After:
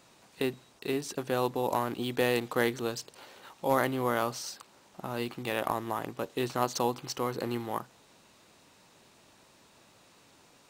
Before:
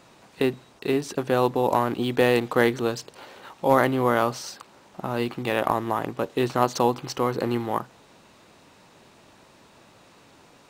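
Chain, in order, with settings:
high-shelf EQ 3,700 Hz +8 dB
level −8 dB

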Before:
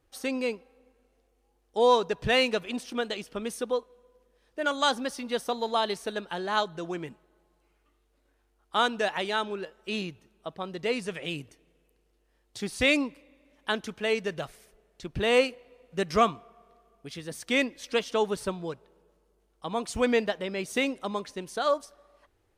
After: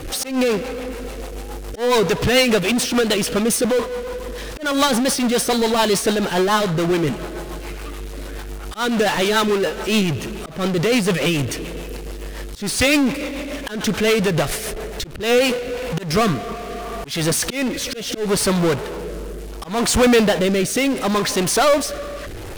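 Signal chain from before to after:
power curve on the samples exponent 0.35
rotating-speaker cabinet horn 7 Hz, later 0.7 Hz, at 0:15.01
volume swells 190 ms
level +3 dB

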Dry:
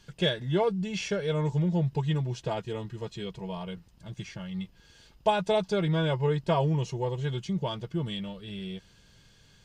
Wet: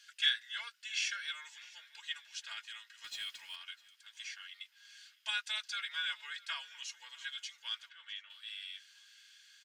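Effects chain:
Chebyshev high-pass filter 1,500 Hz, order 4
0:03.04–0:03.56: power curve on the samples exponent 0.7
0:07.88–0:08.29: low-pass filter 3,400 Hz → 1,800 Hz 12 dB per octave
repeating echo 653 ms, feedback 44%, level −22 dB
level +1.5 dB

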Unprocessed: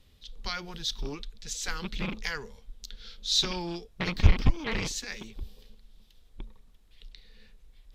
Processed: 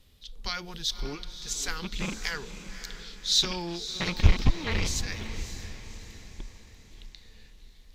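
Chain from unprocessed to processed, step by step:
high-shelf EQ 5,400 Hz +5.5 dB
on a send: feedback delay with all-pass diffusion 560 ms, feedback 47%, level −11 dB

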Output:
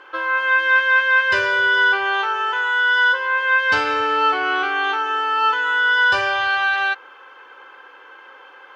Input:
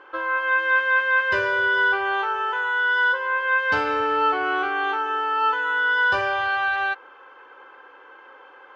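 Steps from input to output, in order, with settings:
high-shelf EQ 2,000 Hz +11.5 dB

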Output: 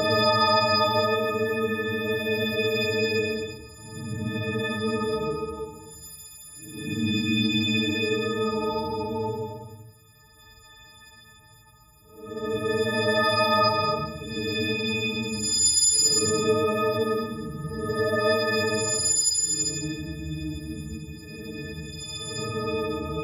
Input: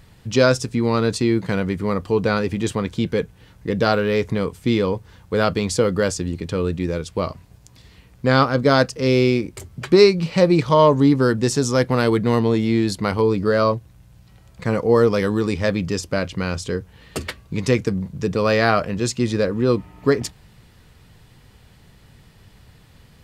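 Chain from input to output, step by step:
every partial snapped to a pitch grid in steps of 6 semitones
extreme stretch with random phases 8.3×, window 0.10 s, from 0:03.82
level −8.5 dB

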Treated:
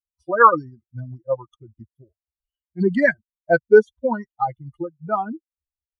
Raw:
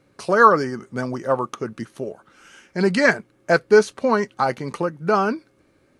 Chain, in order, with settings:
spectral dynamics exaggerated over time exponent 3
Savitzky-Golay smoothing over 41 samples
level +4 dB

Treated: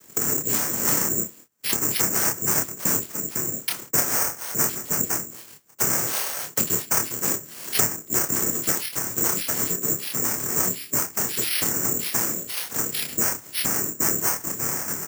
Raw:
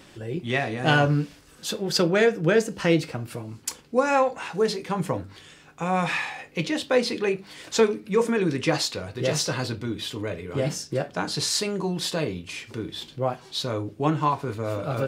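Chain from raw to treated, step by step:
fade-out on the ending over 0.68 s
noise gate −46 dBFS, range −30 dB
0:12.49–0:12.92: high-pass filter 440 Hz
cochlear-implant simulation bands 3
double-tracking delay 27 ms −4 dB
bad sample-rate conversion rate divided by 6×, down filtered, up zero stuff
multiband upward and downward compressor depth 100%
level −9 dB

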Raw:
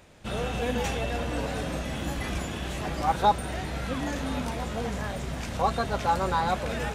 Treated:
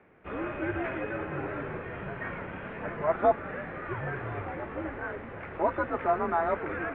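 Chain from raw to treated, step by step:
dynamic equaliser 1,700 Hz, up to +5 dB, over −43 dBFS, Q 1.8
single-sideband voice off tune −150 Hz 260–2,400 Hz
level −2 dB

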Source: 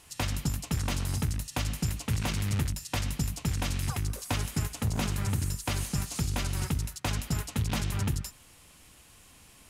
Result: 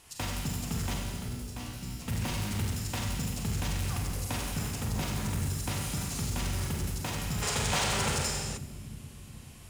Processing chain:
in parallel at −10.5 dB: wrap-around overflow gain 29.5 dB
0:00.94–0:02.02: on the sum: tuned comb filter 61 Hz, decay 0.37 s, harmonics all, mix 90%
delay with a low-pass on its return 428 ms, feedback 58%, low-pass 430 Hz, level −9.5 dB
four-comb reverb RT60 1.6 s, combs from 33 ms, DRR −0.5 dB
0:07.42–0:08.57: gain on a spectral selection 380–9,800 Hz +11 dB
soft clipping −18.5 dBFS, distortion −18 dB
level −4 dB

